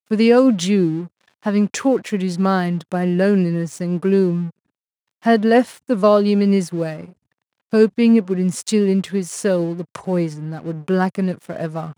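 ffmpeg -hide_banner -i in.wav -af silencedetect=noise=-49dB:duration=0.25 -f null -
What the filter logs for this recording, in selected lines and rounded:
silence_start: 4.51
silence_end: 5.22 | silence_duration: 0.71
silence_start: 7.13
silence_end: 7.71 | silence_duration: 0.58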